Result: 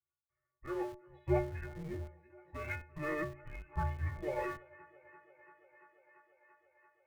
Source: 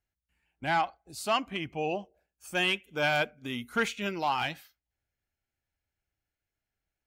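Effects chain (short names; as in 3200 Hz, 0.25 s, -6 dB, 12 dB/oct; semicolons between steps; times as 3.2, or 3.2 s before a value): low shelf 270 Hz +9.5 dB; metallic resonator 210 Hz, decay 0.48 s, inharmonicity 0.008; mistuned SSB -290 Hz 210–2500 Hz; on a send: thinning echo 0.34 s, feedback 83%, high-pass 200 Hz, level -21.5 dB; on the sum: formant shift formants -2 st; in parallel at -11 dB: Schmitt trigger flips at -51.5 dBFS; on the sum: gain +6.5 dB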